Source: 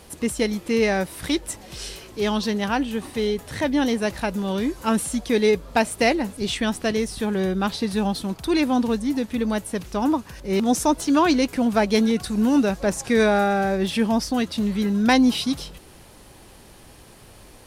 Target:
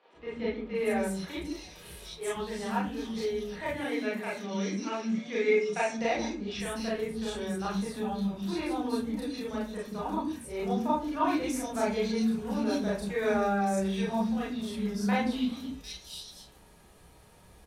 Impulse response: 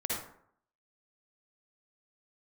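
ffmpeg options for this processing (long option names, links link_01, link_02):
-filter_complex "[0:a]asettb=1/sr,asplit=3[link_01][link_02][link_03];[link_01]atrim=end=3.634[link_04];[link_02]atrim=start=3.63:end=5.85,asetpts=PTS-STARTPTS,afade=type=in:duration=0.004:curve=qsin,afade=type=out:start_time=2.216:duration=0.004:curve=qsin,highpass=frequency=160:width=0.5412,highpass=frequency=160:width=1.3066,equalizer=frequency=900:width_type=q:width=4:gain=-4,equalizer=frequency=2200:width_type=q:width=4:gain=10,equalizer=frequency=5800:width_type=q:width=4:gain=9,lowpass=frequency=7000:width=0.5412,lowpass=frequency=7000:width=1.3066[link_05];[link_03]atrim=start=5.846[link_06];[link_04][link_05]acrossfade=duration=0.004:curve1=hsin:curve2=qsin[link_07];[link_07][link_06]acrossfade=duration=0.004:curve1=qsin:curve2=hsin,acrossover=split=330|3500[link_08][link_09][link_10];[link_08]adelay=140[link_11];[link_10]adelay=750[link_12];[link_11][link_09][link_12]amix=inputs=3:normalize=0[link_13];[1:a]atrim=start_sample=2205,asetrate=83790,aresample=44100[link_14];[link_13][link_14]afir=irnorm=-1:irlink=0,volume=-8.5dB"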